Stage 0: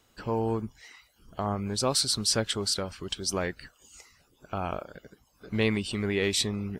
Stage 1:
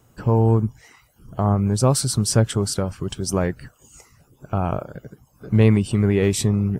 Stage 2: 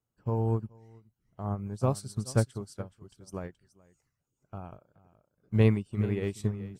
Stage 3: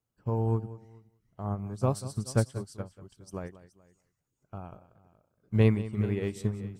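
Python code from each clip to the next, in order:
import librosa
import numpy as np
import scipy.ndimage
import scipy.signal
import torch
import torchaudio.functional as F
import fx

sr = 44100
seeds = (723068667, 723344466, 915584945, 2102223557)

y1 = fx.graphic_eq_10(x, sr, hz=(125, 2000, 4000), db=(11, -5, -12))
y1 = y1 * librosa.db_to_amplitude(7.5)
y2 = y1 + 10.0 ** (-10.5 / 20.0) * np.pad(y1, (int(424 * sr / 1000.0), 0))[:len(y1)]
y2 = fx.upward_expand(y2, sr, threshold_db=-28.0, expansion=2.5)
y2 = y2 * librosa.db_to_amplitude(-5.5)
y3 = y2 + 10.0 ** (-16.0 / 20.0) * np.pad(y2, (int(187 * sr / 1000.0), 0))[:len(y2)]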